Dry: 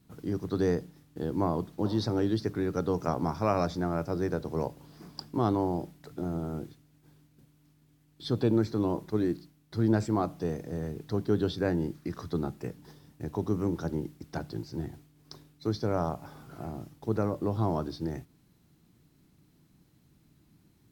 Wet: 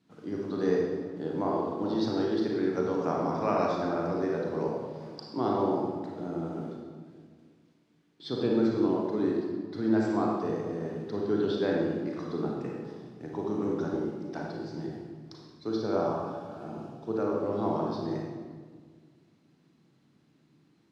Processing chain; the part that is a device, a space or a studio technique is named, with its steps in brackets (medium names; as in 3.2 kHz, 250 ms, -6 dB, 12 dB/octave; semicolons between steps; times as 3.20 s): supermarket ceiling speaker (band-pass 210–5200 Hz; reverberation RT60 1.7 s, pre-delay 31 ms, DRR -2.5 dB); 15.68–17.44 s: band-stop 2 kHz, Q 5.6; trim -2.5 dB